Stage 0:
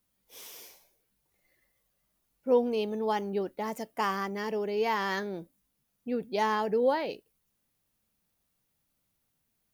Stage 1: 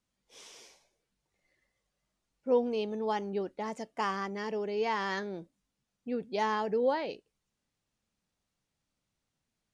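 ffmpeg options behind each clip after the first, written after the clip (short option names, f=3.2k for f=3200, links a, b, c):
-af "lowpass=f=8.1k:w=0.5412,lowpass=f=8.1k:w=1.3066,volume=-2.5dB"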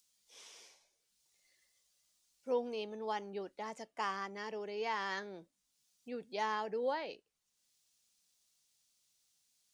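-filter_complex "[0:a]lowshelf=f=410:g=-10,acrossover=split=310|3700[a][b][c];[c]acompressor=mode=upward:threshold=-57dB:ratio=2.5[d];[a][b][d]amix=inputs=3:normalize=0,volume=-3.5dB"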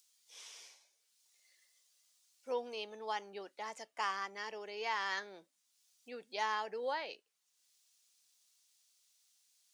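-af "highpass=f=1k:p=1,volume=3.5dB"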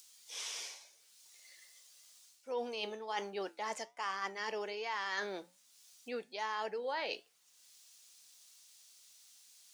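-af "areverse,acompressor=threshold=-48dB:ratio=5,areverse,flanger=delay=6.1:depth=2.9:regen=-83:speed=1.2:shape=triangular,volume=16dB"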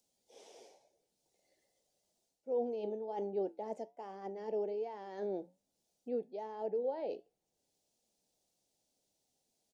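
-af "firequalizer=gain_entry='entry(400,0);entry(790,-6);entry(1100,-27)':delay=0.05:min_phase=1,volume=5.5dB"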